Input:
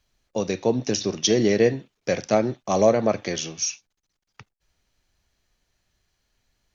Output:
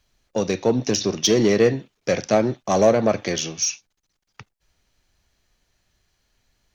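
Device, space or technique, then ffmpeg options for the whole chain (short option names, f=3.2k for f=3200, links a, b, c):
parallel distortion: -filter_complex "[0:a]asplit=2[a][b];[b]asoftclip=type=hard:threshold=-21dB,volume=-5.5dB[c];[a][c]amix=inputs=2:normalize=0"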